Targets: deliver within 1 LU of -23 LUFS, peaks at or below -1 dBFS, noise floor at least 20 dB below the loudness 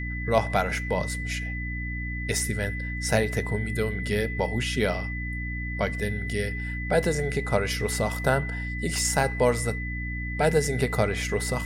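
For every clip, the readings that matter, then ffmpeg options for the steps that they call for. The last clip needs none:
hum 60 Hz; highest harmonic 300 Hz; hum level -30 dBFS; steady tone 2 kHz; tone level -34 dBFS; loudness -27.0 LUFS; peak level -6.0 dBFS; loudness target -23.0 LUFS
-> -af "bandreject=f=60:t=h:w=4,bandreject=f=120:t=h:w=4,bandreject=f=180:t=h:w=4,bandreject=f=240:t=h:w=4,bandreject=f=300:t=h:w=4"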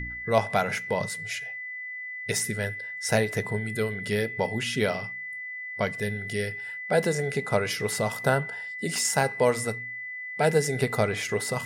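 hum not found; steady tone 2 kHz; tone level -34 dBFS
-> -af "bandreject=f=2000:w=30"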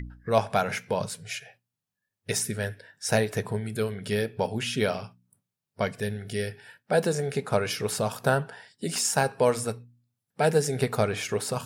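steady tone not found; loudness -28.0 LUFS; peak level -7.0 dBFS; loudness target -23.0 LUFS
-> -af "volume=1.78"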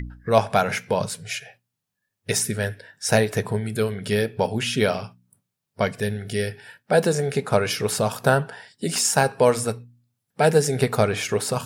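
loudness -23.0 LUFS; peak level -2.0 dBFS; noise floor -82 dBFS

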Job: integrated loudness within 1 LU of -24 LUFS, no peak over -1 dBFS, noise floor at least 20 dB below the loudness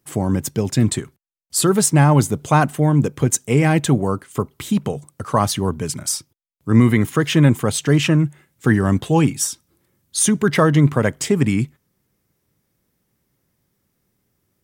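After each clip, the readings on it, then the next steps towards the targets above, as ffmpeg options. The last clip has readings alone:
loudness -18.0 LUFS; peak level -2.5 dBFS; loudness target -24.0 LUFS
-> -af "volume=0.501"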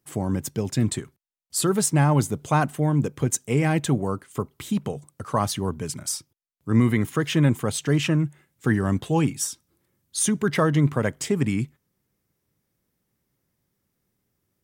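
loudness -24.0 LUFS; peak level -8.5 dBFS; noise floor -77 dBFS

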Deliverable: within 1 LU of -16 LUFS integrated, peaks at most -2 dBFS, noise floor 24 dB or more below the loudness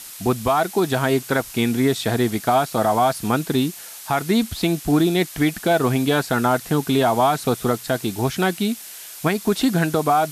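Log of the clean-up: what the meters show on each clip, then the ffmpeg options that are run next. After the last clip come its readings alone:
noise floor -38 dBFS; noise floor target -45 dBFS; loudness -20.5 LUFS; peak level -8.0 dBFS; loudness target -16.0 LUFS
-> -af "afftdn=nr=7:nf=-38"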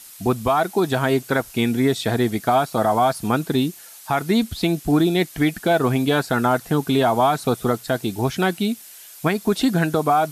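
noise floor -43 dBFS; noise floor target -45 dBFS
-> -af "afftdn=nr=6:nf=-43"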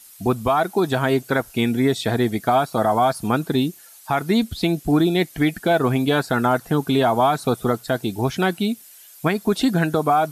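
noise floor -46 dBFS; loudness -20.5 LUFS; peak level -8.5 dBFS; loudness target -16.0 LUFS
-> -af "volume=1.68"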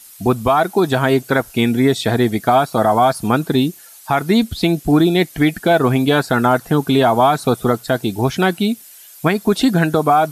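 loudness -16.0 LUFS; peak level -4.0 dBFS; noise floor -42 dBFS

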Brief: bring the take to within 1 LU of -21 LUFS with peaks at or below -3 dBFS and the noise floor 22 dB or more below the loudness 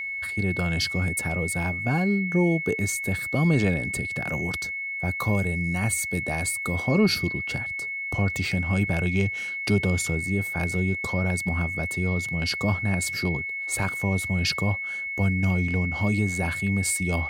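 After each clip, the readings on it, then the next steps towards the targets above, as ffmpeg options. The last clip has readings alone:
steady tone 2.2 kHz; tone level -29 dBFS; loudness -25.0 LUFS; peak level -10.5 dBFS; loudness target -21.0 LUFS
-> -af "bandreject=f=2200:w=30"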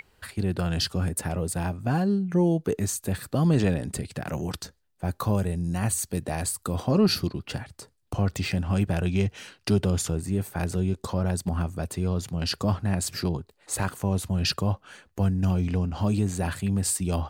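steady tone not found; loudness -27.0 LUFS; peak level -11.5 dBFS; loudness target -21.0 LUFS
-> -af "volume=2"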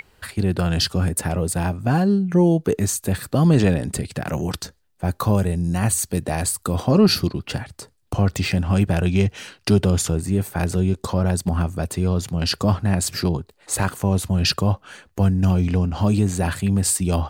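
loudness -21.0 LUFS; peak level -5.5 dBFS; noise floor -61 dBFS

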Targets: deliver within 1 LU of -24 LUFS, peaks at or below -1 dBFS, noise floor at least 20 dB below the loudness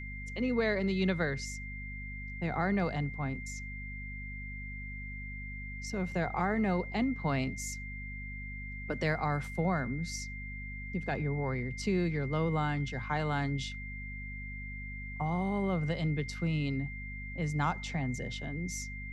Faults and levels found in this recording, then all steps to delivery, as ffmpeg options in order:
hum 50 Hz; highest harmonic 250 Hz; hum level -40 dBFS; steady tone 2.1 kHz; tone level -43 dBFS; loudness -34.5 LUFS; peak level -17.5 dBFS; loudness target -24.0 LUFS
-> -af "bandreject=f=50:t=h:w=6,bandreject=f=100:t=h:w=6,bandreject=f=150:t=h:w=6,bandreject=f=200:t=h:w=6,bandreject=f=250:t=h:w=6"
-af "bandreject=f=2100:w=30"
-af "volume=3.35"

